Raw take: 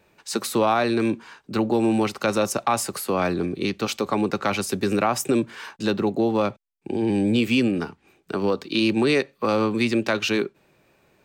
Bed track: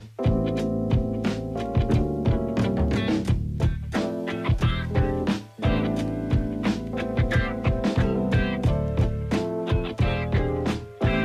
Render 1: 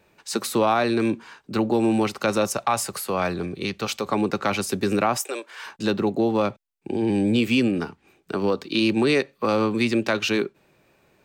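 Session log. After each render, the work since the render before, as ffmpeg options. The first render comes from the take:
ffmpeg -i in.wav -filter_complex "[0:a]asettb=1/sr,asplit=3[link_01][link_02][link_03];[link_01]atrim=end=2.474[link_04];[link_02]atrim=start=2.47:end=4.07,asetpts=PTS-STARTPTS,afade=type=in:duration=0.004:curve=qsin,afade=type=out:start_time=1.596:duration=0.004:curve=qsin,equalizer=frequency=290:width=1.5:gain=-6.5[link_05];[link_03]atrim=start=4.066[link_06];[link_04][link_05]acrossfade=duration=0.004:curve1=hsin:curve2=qsin[link_07];[link_07][link_06]acrossfade=duration=0.004:curve1=qsin:curve2=hsin,asettb=1/sr,asplit=3[link_08][link_09][link_10];[link_08]atrim=end=5.174[link_11];[link_09]atrim=start=5.17:end=5.66,asetpts=PTS-STARTPTS,afade=type=in:duration=0.004:curve=qsin,afade=type=out:start_time=0.486:duration=0.004:curve=qsin,highpass=frequency=510:width=0.5412,highpass=frequency=510:width=1.3066[link_12];[link_10]atrim=start=5.656[link_13];[link_11][link_12]acrossfade=duration=0.004:curve1=hsin:curve2=qsin[link_14];[link_14][link_13]acrossfade=duration=0.004:curve1=qsin:curve2=hsin" out.wav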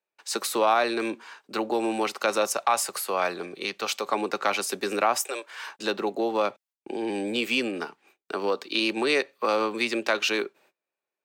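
ffmpeg -i in.wav -af "highpass=460,agate=range=-27dB:threshold=-57dB:ratio=16:detection=peak" out.wav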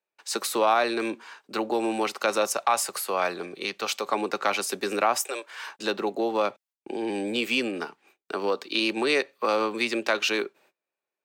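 ffmpeg -i in.wav -af anull out.wav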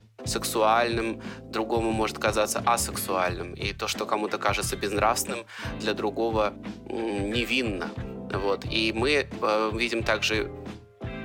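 ffmpeg -i in.wav -i bed.wav -filter_complex "[1:a]volume=-13dB[link_01];[0:a][link_01]amix=inputs=2:normalize=0" out.wav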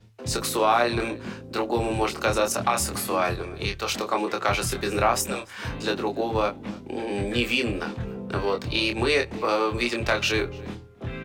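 ffmpeg -i in.wav -filter_complex "[0:a]asplit=2[link_01][link_02];[link_02]adelay=25,volume=-4.5dB[link_03];[link_01][link_03]amix=inputs=2:normalize=0,asplit=2[link_04][link_05];[link_05]adelay=291.5,volume=-22dB,highshelf=frequency=4000:gain=-6.56[link_06];[link_04][link_06]amix=inputs=2:normalize=0" out.wav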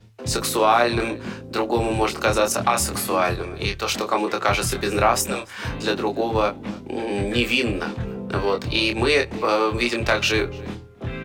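ffmpeg -i in.wav -af "volume=3.5dB" out.wav

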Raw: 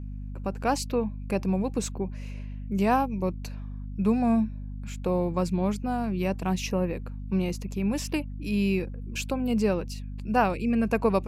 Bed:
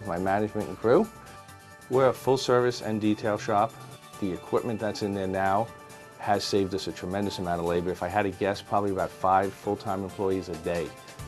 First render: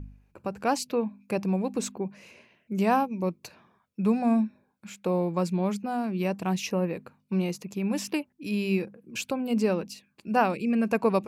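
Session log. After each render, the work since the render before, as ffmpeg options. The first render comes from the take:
ffmpeg -i in.wav -af "bandreject=frequency=50:width_type=h:width=4,bandreject=frequency=100:width_type=h:width=4,bandreject=frequency=150:width_type=h:width=4,bandreject=frequency=200:width_type=h:width=4,bandreject=frequency=250:width_type=h:width=4" out.wav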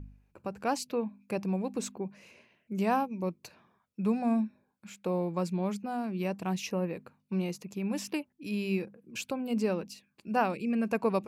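ffmpeg -i in.wav -af "volume=-4.5dB" out.wav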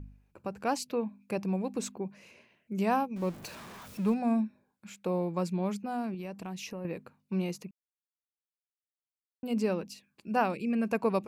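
ffmpeg -i in.wav -filter_complex "[0:a]asettb=1/sr,asplit=3[link_01][link_02][link_03];[link_01]atrim=end=3.164[link_04];[link_02]atrim=start=3.16:end=4.14,asetpts=PTS-STARTPTS,afade=type=in:duration=0.004:curve=qsin,afade=type=out:start_time=0.976:duration=0.004:curve=qsin,aeval=exprs='val(0)+0.5*0.00841*sgn(val(0))':channel_layout=same[link_05];[link_03]atrim=start=4.136[link_06];[link_04][link_05]acrossfade=duration=0.004:curve1=hsin:curve2=qsin[link_07];[link_07][link_06]acrossfade=duration=0.004:curve1=qsin:curve2=hsin,asettb=1/sr,asplit=3[link_08][link_09][link_10];[link_08]atrim=end=6.144[link_11];[link_09]atrim=start=6.14:end=6.85,asetpts=PTS-STARTPTS,afade=type=in:duration=0.004:curve=qsin,afade=type=out:start_time=0.706:duration=0.004:curve=qsin,acompressor=threshold=-37dB:ratio=4:attack=3.2:release=140:knee=1:detection=peak[link_12];[link_10]atrim=start=6.846[link_13];[link_11][link_12]acrossfade=duration=0.004:curve1=hsin:curve2=qsin[link_14];[link_14][link_13]acrossfade=duration=0.004:curve1=qsin:curve2=hsin,asplit=3[link_15][link_16][link_17];[link_15]atrim=end=7.71,asetpts=PTS-STARTPTS,afade=type=out:start_time=7.706:duration=0.004:curve=hsin[link_18];[link_16]atrim=start=7.71:end=9.43,asetpts=PTS-STARTPTS,volume=0[link_19];[link_17]atrim=start=9.43,asetpts=PTS-STARTPTS,afade=type=in:duration=0.004:curve=hsin[link_20];[link_18][link_19][link_20]concat=n=3:v=0:a=1" out.wav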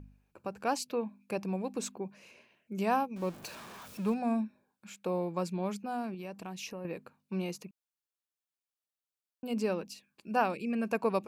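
ffmpeg -i in.wav -af "lowshelf=frequency=220:gain=-7,bandreject=frequency=2000:width=15" out.wav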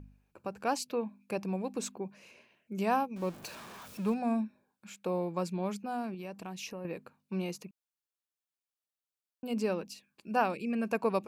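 ffmpeg -i in.wav -af anull out.wav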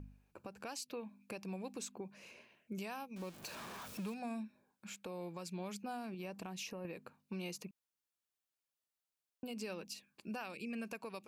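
ffmpeg -i in.wav -filter_complex "[0:a]acrossover=split=2000[link_01][link_02];[link_01]acompressor=threshold=-41dB:ratio=4[link_03];[link_03][link_02]amix=inputs=2:normalize=0,alimiter=level_in=10dB:limit=-24dB:level=0:latency=1:release=182,volume=-10dB" out.wav

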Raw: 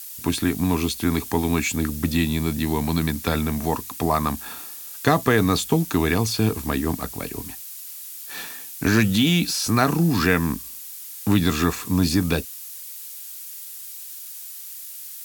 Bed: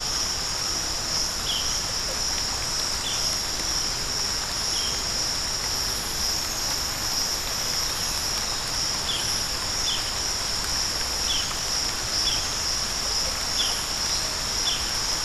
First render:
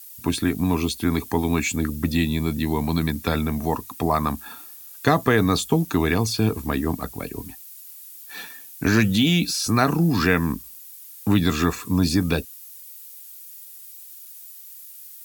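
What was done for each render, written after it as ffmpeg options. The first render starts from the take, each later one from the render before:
ffmpeg -i in.wav -af "afftdn=noise_reduction=9:noise_floor=-38" out.wav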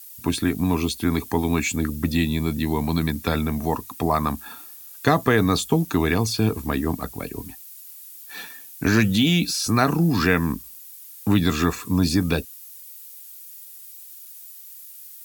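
ffmpeg -i in.wav -af anull out.wav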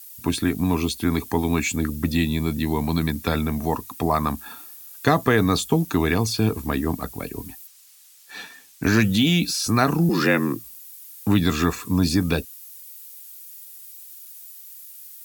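ffmpeg -i in.wav -filter_complex "[0:a]asettb=1/sr,asplit=3[link_01][link_02][link_03];[link_01]atrim=end=7.674[link_04];[link_02]atrim=start=7.67:end=8.83,asetpts=PTS-STARTPTS,afade=type=in:duration=0.004:curve=qsin,afade=type=out:start_time=1.156:duration=0.004:curve=qsin,acrossover=split=8500[link_05][link_06];[link_06]acompressor=threshold=-53dB:ratio=4:attack=1:release=60[link_07];[link_05][link_07]amix=inputs=2:normalize=0[link_08];[link_03]atrim=start=8.826[link_09];[link_04][link_08]acrossfade=duration=0.004:curve1=hsin:curve2=qsin[link_10];[link_10][link_09]acrossfade=duration=0.004:curve1=qsin:curve2=hsin,asettb=1/sr,asplit=3[link_11][link_12][link_13];[link_11]atrim=end=10.094[link_14];[link_12]atrim=start=10.09:end=10.64,asetpts=PTS-STARTPTS,afade=type=in:duration=0.004:curve=qsin,afade=type=out:start_time=0.546:duration=0.004:curve=qsin,afreqshift=62[link_15];[link_13]atrim=start=10.636[link_16];[link_14][link_15]acrossfade=duration=0.004:curve1=hsin:curve2=qsin[link_17];[link_17][link_16]acrossfade=duration=0.004:curve1=qsin:curve2=hsin" out.wav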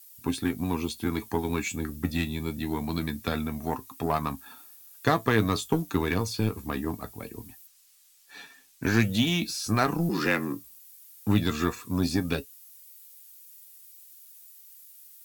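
ffmpeg -i in.wav -af "aeval=exprs='0.708*(cos(1*acos(clip(val(0)/0.708,-1,1)))-cos(1*PI/2))+0.0398*(cos(7*acos(clip(val(0)/0.708,-1,1)))-cos(7*PI/2))':channel_layout=same,flanger=delay=7:depth=3.8:regen=60:speed=0.24:shape=triangular" out.wav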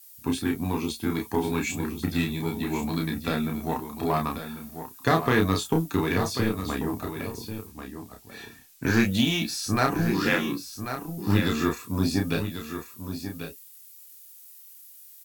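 ffmpeg -i in.wav -filter_complex "[0:a]asplit=2[link_01][link_02];[link_02]adelay=31,volume=-3.5dB[link_03];[link_01][link_03]amix=inputs=2:normalize=0,aecho=1:1:1090:0.335" out.wav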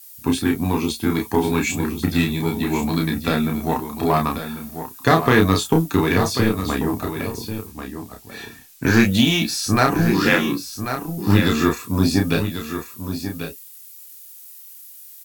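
ffmpeg -i in.wav -af "volume=7dB,alimiter=limit=-2dB:level=0:latency=1" out.wav

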